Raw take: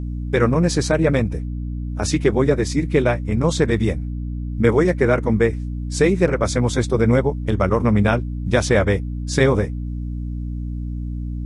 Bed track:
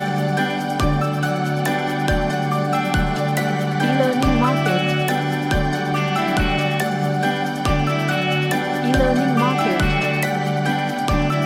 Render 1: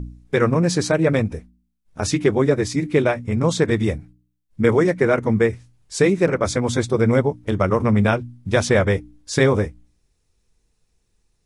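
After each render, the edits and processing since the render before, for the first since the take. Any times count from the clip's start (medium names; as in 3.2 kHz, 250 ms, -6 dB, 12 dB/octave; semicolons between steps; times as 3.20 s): de-hum 60 Hz, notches 5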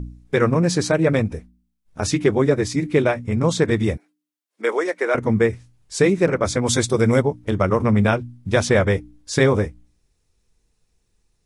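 3.97–5.15 s: Bessel high-pass 530 Hz, order 6; 6.65–7.21 s: treble shelf 3 kHz -> 5.3 kHz +11.5 dB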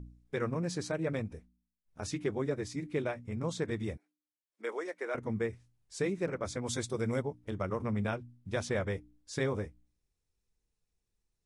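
trim -16 dB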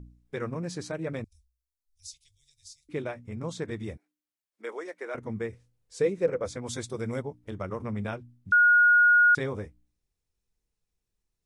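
1.24–2.89 s: inverse Chebyshev band-stop 170–1400 Hz, stop band 60 dB; 5.52–6.50 s: peaking EQ 490 Hz +13.5 dB 0.28 oct; 8.52–9.35 s: bleep 1.44 kHz -15.5 dBFS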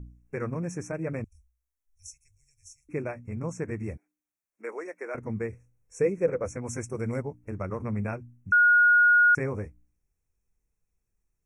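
FFT band-reject 2.7–5.4 kHz; bass shelf 160 Hz +5 dB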